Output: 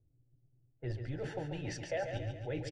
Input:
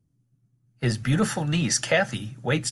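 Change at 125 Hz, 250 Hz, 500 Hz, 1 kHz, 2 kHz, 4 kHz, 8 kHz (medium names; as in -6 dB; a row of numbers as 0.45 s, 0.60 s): -13.5 dB, -17.0 dB, -11.0 dB, -14.5 dB, -18.5 dB, -20.5 dB, -25.5 dB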